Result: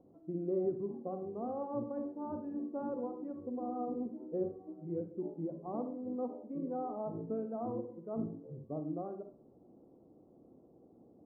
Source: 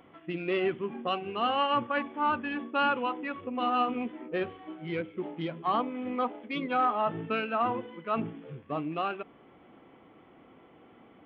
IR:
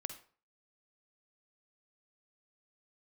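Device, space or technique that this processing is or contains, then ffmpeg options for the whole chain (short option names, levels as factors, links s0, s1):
next room: -filter_complex "[0:a]lowpass=f=620:w=0.5412,lowpass=f=620:w=1.3066[s0];[1:a]atrim=start_sample=2205[s1];[s0][s1]afir=irnorm=-1:irlink=0,volume=0.794"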